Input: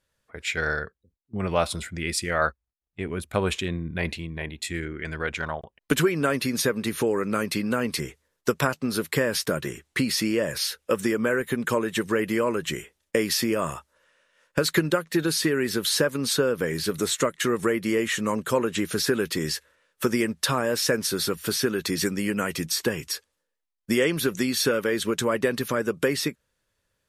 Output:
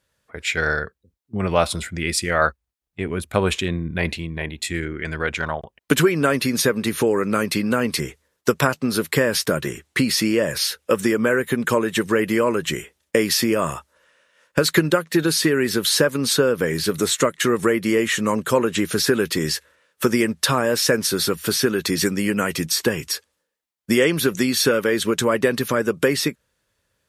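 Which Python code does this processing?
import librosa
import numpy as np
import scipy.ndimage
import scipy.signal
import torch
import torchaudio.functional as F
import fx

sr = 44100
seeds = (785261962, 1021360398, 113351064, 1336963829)

y = scipy.signal.sosfilt(scipy.signal.butter(2, 41.0, 'highpass', fs=sr, output='sos'), x)
y = y * 10.0 ** (5.0 / 20.0)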